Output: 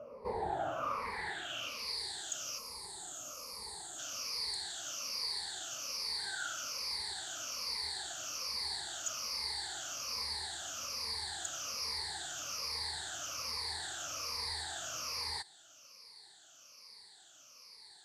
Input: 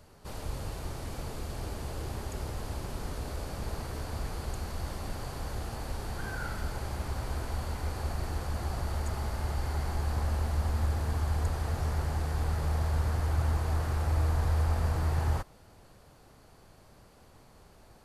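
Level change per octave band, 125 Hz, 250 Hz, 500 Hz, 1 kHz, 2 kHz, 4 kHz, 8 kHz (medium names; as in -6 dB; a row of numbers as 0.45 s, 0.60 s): -28.0 dB, -16.0 dB, -6.5 dB, -3.5 dB, 0.0 dB, +11.0 dB, +8.5 dB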